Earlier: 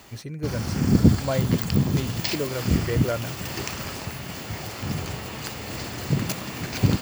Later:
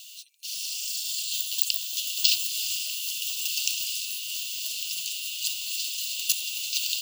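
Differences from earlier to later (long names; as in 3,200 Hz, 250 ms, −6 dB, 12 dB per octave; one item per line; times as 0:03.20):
background +10.0 dB
master: add Chebyshev high-pass with heavy ripple 2,700 Hz, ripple 3 dB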